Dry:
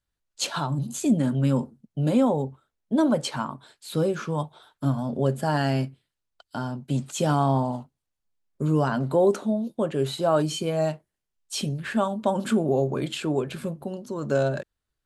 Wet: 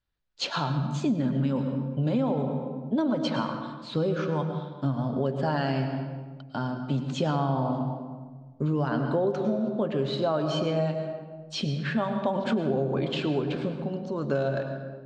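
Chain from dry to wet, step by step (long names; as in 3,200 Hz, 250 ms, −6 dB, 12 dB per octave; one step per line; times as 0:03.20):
low-pass filter 4,900 Hz 24 dB per octave
convolution reverb RT60 1.4 s, pre-delay 94 ms, DRR 7 dB
downward compressor, threshold −22 dBFS, peak gain reduction 7.5 dB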